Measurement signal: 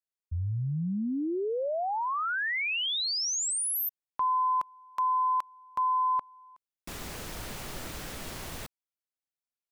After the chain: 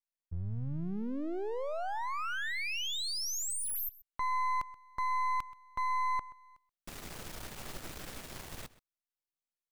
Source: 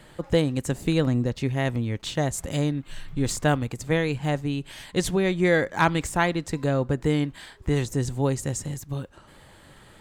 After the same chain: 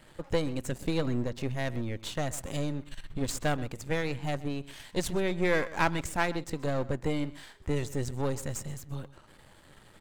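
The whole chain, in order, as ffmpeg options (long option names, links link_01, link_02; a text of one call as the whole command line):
ffmpeg -i in.wav -filter_complex "[0:a]aeval=exprs='if(lt(val(0),0),0.251*val(0),val(0))':channel_layout=same,asplit=2[link_01][link_02];[link_02]adelay=128.3,volume=-18dB,highshelf=frequency=4000:gain=-2.89[link_03];[link_01][link_03]amix=inputs=2:normalize=0,volume=-2.5dB" out.wav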